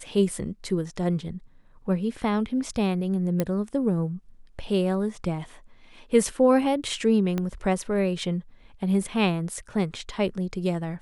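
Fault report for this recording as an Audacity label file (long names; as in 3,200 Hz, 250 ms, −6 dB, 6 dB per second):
3.400000	3.400000	click −11 dBFS
7.380000	7.380000	click −15 dBFS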